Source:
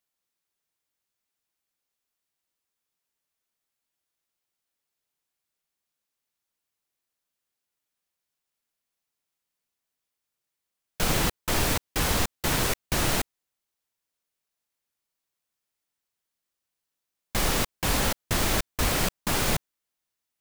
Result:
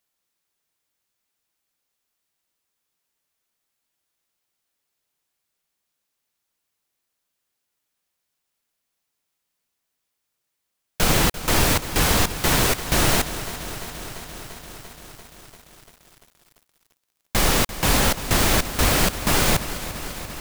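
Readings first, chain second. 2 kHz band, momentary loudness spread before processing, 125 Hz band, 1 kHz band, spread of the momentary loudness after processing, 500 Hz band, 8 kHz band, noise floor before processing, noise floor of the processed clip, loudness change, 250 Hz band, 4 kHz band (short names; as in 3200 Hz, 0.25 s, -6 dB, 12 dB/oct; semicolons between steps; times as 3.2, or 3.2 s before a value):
+6.5 dB, 3 LU, +6.5 dB, +6.5 dB, 16 LU, +6.5 dB, +6.5 dB, -85 dBFS, -79 dBFS, +5.5 dB, +6.5 dB, +6.5 dB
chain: lo-fi delay 0.343 s, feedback 80%, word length 8-bit, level -13.5 dB; gain +6 dB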